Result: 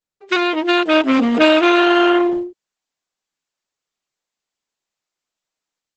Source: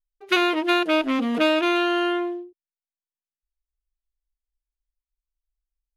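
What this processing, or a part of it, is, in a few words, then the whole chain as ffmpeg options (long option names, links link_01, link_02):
video call: -af "highpass=frequency=160:width=0.5412,highpass=frequency=160:width=1.3066,dynaudnorm=framelen=130:gausssize=3:maxgain=16.5dB,volume=-1dB" -ar 48000 -c:a libopus -b:a 12k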